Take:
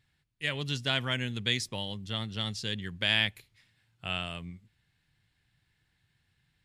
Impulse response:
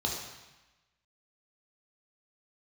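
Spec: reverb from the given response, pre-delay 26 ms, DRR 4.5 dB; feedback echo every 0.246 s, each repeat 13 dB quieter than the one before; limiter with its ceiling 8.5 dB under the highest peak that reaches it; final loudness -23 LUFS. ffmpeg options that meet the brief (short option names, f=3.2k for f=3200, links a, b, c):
-filter_complex "[0:a]alimiter=limit=-20.5dB:level=0:latency=1,aecho=1:1:246|492|738:0.224|0.0493|0.0108,asplit=2[a][b];[1:a]atrim=start_sample=2205,adelay=26[c];[b][c]afir=irnorm=-1:irlink=0,volume=-11dB[d];[a][d]amix=inputs=2:normalize=0,volume=9.5dB"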